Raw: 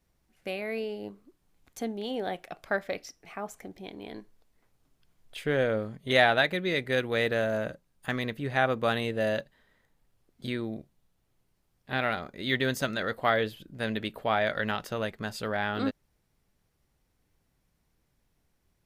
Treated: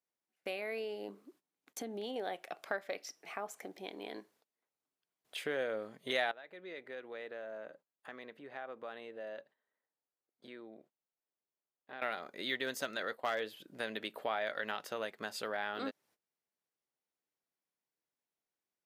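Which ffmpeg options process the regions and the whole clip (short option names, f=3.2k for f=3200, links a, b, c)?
-filter_complex "[0:a]asettb=1/sr,asplit=3[a][b][c];[a]atrim=end=1.084[d];[b]atrim=start=1.08:end=2.16,asetpts=PTS-STARTPTS,afade=t=in:d=0.004:c=qsin,afade=t=out:st=1.076:d=0.004:c=qsin,equalizer=f=250:w=1:g=6,acompressor=threshold=-31dB:ratio=6:attack=3.2:release=140:knee=1:detection=peak[e];[c]atrim=start=2.156[f];[d][e]acrossfade=d=0.004:c1=hsin:c2=qsin[g];[g][f]acrossfade=d=0.004:c1=qsin:c2=hsin,asettb=1/sr,asplit=3[h][i][j];[h]atrim=end=6.314[k];[i]atrim=start=6.31:end=12.02,asetpts=PTS-STARTPTS,afade=t=in:d=0.004:c=qsin,afade=t=out:st=5.706:d=0.004:c=qsin,lowpass=f=1.4k:p=1,equalizer=f=84:t=o:w=2.7:g=-7.5,acompressor=threshold=-53dB:ratio=2:attack=3.2:release=140:knee=1:detection=peak[l];[j]atrim=start=12.016[m];[k][l]acrossfade=d=0.004:c1=hsin:c2=qsin[n];[n][m]acrossfade=d=0.004:c1=qsin:c2=hsin,asettb=1/sr,asplit=3[o][p][q];[o]atrim=end=12.664[r];[p]atrim=start=12.66:end=13.48,asetpts=PTS-STARTPTS,afade=t=in:d=0.004:c=qsin,afade=t=out:st=0.816:d=0.004:c=qsin,agate=range=-33dB:threshold=-39dB:ratio=3:release=100:detection=peak,asoftclip=type=hard:threshold=-18dB[s];[q]atrim=start=13.476[t];[r][s]acrossfade=d=0.004:c1=hsin:c2=qsin[u];[u][t]acrossfade=d=0.004:c1=qsin:c2=hsin,agate=range=-18dB:threshold=-59dB:ratio=16:detection=peak,highpass=360,acompressor=threshold=-41dB:ratio=2,volume=1dB"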